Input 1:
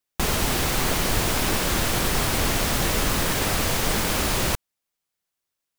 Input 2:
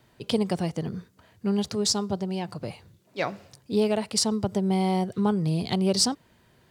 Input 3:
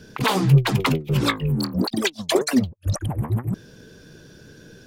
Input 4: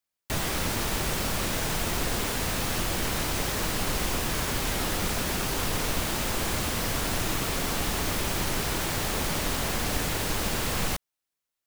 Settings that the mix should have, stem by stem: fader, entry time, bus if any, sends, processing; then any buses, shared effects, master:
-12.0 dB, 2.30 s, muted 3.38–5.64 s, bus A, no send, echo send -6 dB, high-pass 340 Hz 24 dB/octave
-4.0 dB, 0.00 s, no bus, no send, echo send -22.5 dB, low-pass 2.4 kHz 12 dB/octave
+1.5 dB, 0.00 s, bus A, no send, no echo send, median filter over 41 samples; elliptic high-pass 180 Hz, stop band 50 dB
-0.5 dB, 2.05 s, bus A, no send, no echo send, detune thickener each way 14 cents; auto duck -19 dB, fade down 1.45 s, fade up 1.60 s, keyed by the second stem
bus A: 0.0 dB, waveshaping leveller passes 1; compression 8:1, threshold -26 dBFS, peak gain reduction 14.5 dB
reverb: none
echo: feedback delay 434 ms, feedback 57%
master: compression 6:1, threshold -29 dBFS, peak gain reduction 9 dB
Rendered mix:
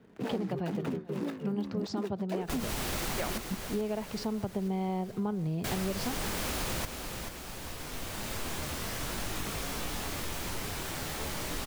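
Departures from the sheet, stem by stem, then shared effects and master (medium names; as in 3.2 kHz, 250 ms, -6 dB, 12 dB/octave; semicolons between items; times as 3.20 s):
stem 1: missing high-pass 340 Hz 24 dB/octave; stem 3 +1.5 dB -> -9.5 dB; stem 4 -0.5 dB -> -7.5 dB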